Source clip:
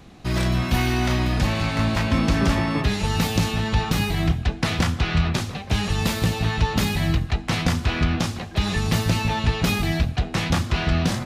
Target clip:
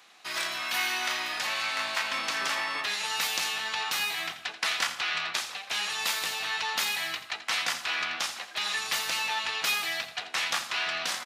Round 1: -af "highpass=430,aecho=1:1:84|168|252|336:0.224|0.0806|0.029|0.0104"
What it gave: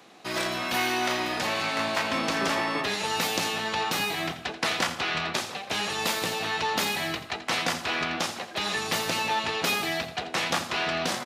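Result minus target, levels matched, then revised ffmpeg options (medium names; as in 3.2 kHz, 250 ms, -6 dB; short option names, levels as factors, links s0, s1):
500 Hz band +10.5 dB
-af "highpass=1200,aecho=1:1:84|168|252|336:0.224|0.0806|0.029|0.0104"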